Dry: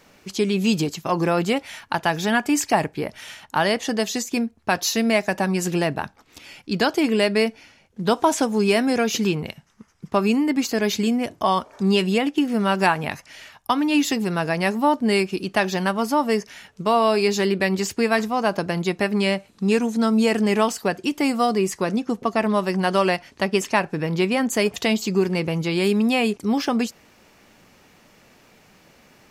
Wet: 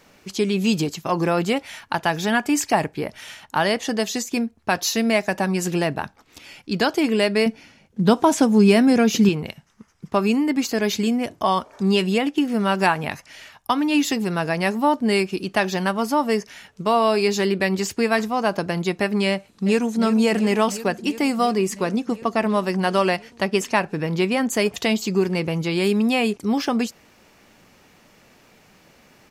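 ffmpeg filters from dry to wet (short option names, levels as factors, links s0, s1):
-filter_complex "[0:a]asettb=1/sr,asplit=3[s0][s1][s2];[s0]atrim=end=7.464[s3];[s1]atrim=start=7.46:end=9.29,asetpts=PTS-STARTPTS,afade=t=in:d=0.004:c=qsin,afade=t=out:st=1.826:d=0.004:c=qsin,equalizer=f=190:t=o:w=1.6:g=8[s4];[s2]atrim=start=9.286[s5];[s3][s4]acrossfade=d=0.004:c1=hsin:c2=qsin[s6];[s6][s5]acrossfade=d=0.004:c1=qsin:c2=hsin,asplit=2[s7][s8];[s8]afade=t=in:st=19.31:d=0.01,afade=t=out:st=19.99:d=0.01,aecho=0:1:350|700|1050|1400|1750|2100|2450|2800|3150|3500|3850|4200:0.266073|0.212858|0.170286|0.136229|0.108983|0.0871866|0.0697493|0.0557994|0.0446396|0.0357116|0.0285693|0.0228555[s9];[s7][s9]amix=inputs=2:normalize=0"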